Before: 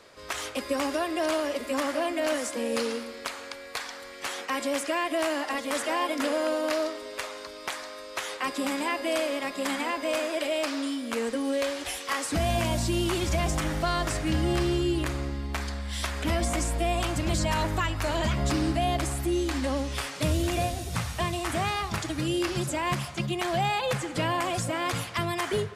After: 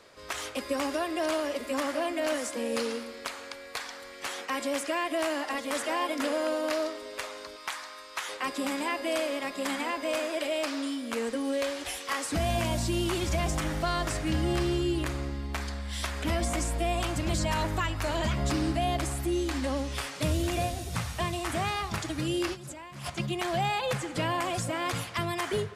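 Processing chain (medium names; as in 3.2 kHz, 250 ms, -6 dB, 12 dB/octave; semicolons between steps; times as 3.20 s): 7.56–8.29 s: resonant low shelf 720 Hz -7 dB, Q 1.5; 22.53–23.10 s: compressor with a negative ratio -40 dBFS, ratio -1; trim -2 dB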